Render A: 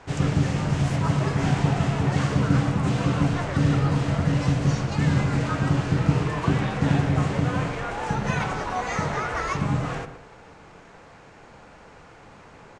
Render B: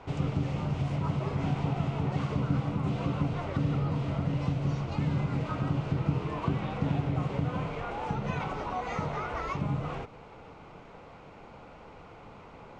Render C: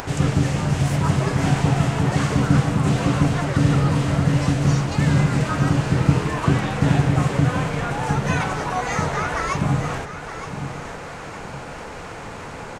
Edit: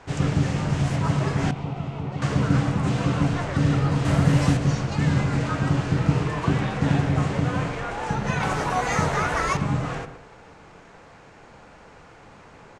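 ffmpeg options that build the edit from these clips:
-filter_complex "[2:a]asplit=2[s0][s1];[0:a]asplit=4[s2][s3][s4][s5];[s2]atrim=end=1.512[s6];[1:a]atrim=start=1.508:end=2.222[s7];[s3]atrim=start=2.218:end=4.052[s8];[s0]atrim=start=4.048:end=4.572[s9];[s4]atrim=start=4.568:end=8.432[s10];[s1]atrim=start=8.428:end=9.572[s11];[s5]atrim=start=9.568[s12];[s6][s7]acrossfade=d=0.004:c1=hsin:c2=hsin[s13];[s13][s8]acrossfade=d=0.004:c1=hsin:c2=hsin[s14];[s14][s9]acrossfade=d=0.004:c1=hsin:c2=hsin[s15];[s15][s10]acrossfade=d=0.004:c1=hsin:c2=hsin[s16];[s16][s11]acrossfade=d=0.004:c1=hsin:c2=hsin[s17];[s17][s12]acrossfade=d=0.004:c1=hsin:c2=hsin"

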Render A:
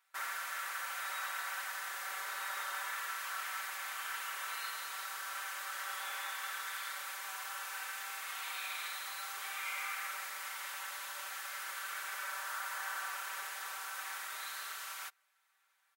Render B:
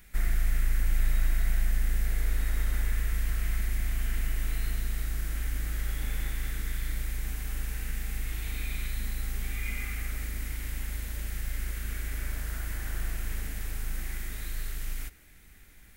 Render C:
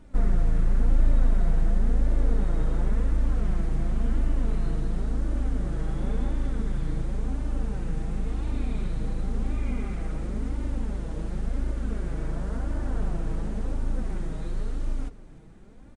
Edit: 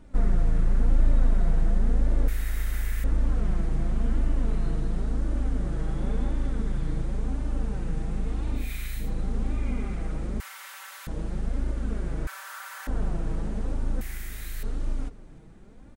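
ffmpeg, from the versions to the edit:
-filter_complex "[1:a]asplit=3[s0][s1][s2];[0:a]asplit=2[s3][s4];[2:a]asplit=6[s5][s6][s7][s8][s9][s10];[s5]atrim=end=2.282[s11];[s0]atrim=start=2.278:end=3.042[s12];[s6]atrim=start=3.038:end=8.71[s13];[s1]atrim=start=8.55:end=9.11[s14];[s7]atrim=start=8.95:end=10.402[s15];[s3]atrim=start=10.398:end=11.072[s16];[s8]atrim=start=11.068:end=12.272[s17];[s4]atrim=start=12.268:end=12.872[s18];[s9]atrim=start=12.868:end=14.012[s19];[s2]atrim=start=14.008:end=14.632[s20];[s10]atrim=start=14.628[s21];[s11][s12]acrossfade=d=0.004:c1=hsin:c2=hsin[s22];[s22][s13]acrossfade=d=0.004:c1=hsin:c2=hsin[s23];[s23][s14]acrossfade=d=0.16:c1=tri:c2=tri[s24];[s24][s15]acrossfade=d=0.16:c1=tri:c2=tri[s25];[s25][s16]acrossfade=d=0.004:c1=hsin:c2=hsin[s26];[s26][s17]acrossfade=d=0.004:c1=hsin:c2=hsin[s27];[s27][s18]acrossfade=d=0.004:c1=hsin:c2=hsin[s28];[s28][s19]acrossfade=d=0.004:c1=hsin:c2=hsin[s29];[s29][s20]acrossfade=d=0.004:c1=hsin:c2=hsin[s30];[s30][s21]acrossfade=d=0.004:c1=hsin:c2=hsin"

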